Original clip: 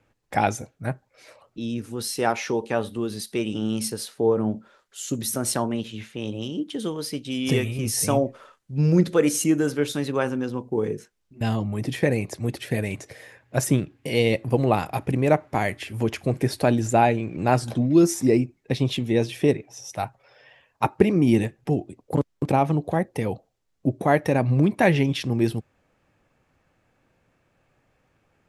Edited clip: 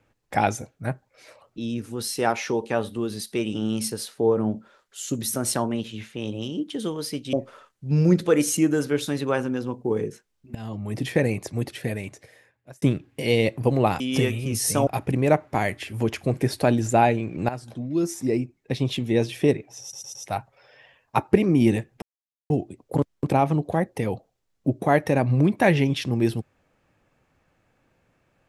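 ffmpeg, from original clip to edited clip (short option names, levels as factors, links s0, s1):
-filter_complex "[0:a]asplit=11[s0][s1][s2][s3][s4][s5][s6][s7][s8][s9][s10];[s0]atrim=end=7.332[s11];[s1]atrim=start=8.198:end=11.42,asetpts=PTS-STARTPTS,afade=t=out:st=3.218:d=0.004:c=hsin:silence=0.11885[s12];[s2]atrim=start=11.42:end=13.69,asetpts=PTS-STARTPTS,afade=t=in:d=0.47:silence=0.11885,afade=t=out:st=0.98:d=1.29[s13];[s3]atrim=start=13.69:end=14.872,asetpts=PTS-STARTPTS,afade=t=in:d=0.004:c=hsin[s14];[s4]atrim=start=7.328:end=8.202[s15];[s5]atrim=start=14.868:end=17.49,asetpts=PTS-STARTPTS,afade=t=out:st=2.618:d=0.004:c=hsin:silence=0.177828[s16];[s6]atrim=start=17.49:end=19.932,asetpts=PTS-STARTPTS,afade=t=in:d=1.69:silence=0.177828[s17];[s7]atrim=start=19.818:end=19.932[s18];[s8]atrim=start=19.818:end=19.932[s19];[s9]atrim=start=19.818:end=21.69,asetpts=PTS-STARTPTS,afade=t=out:st=1.868:d=0.004:c=hsin,apad=pad_dur=0.48[s20];[s10]atrim=start=21.69,asetpts=PTS-STARTPTS,afade=t=in:d=0.004:c=hsin[s21];[s12][s13][s14]concat=n=3:v=0:a=1[s22];[s11][s22]acrossfade=d=0.004:c1=hsin:c2=hsin[s23];[s23][s15]acrossfade=d=0.004:c1=hsin:c2=hsin[s24];[s16][s17]concat=n=2:v=0:a=1[s25];[s24][s25]acrossfade=d=0.004:c1=hsin:c2=hsin[s26];[s26][s18]acrossfade=d=0.004:c1=hsin:c2=hsin[s27];[s27][s19]acrossfade=d=0.004:c1=hsin:c2=hsin[s28];[s20][s21]concat=n=2:v=0:a=1[s29];[s28][s29]acrossfade=d=0.004:c1=hsin:c2=hsin"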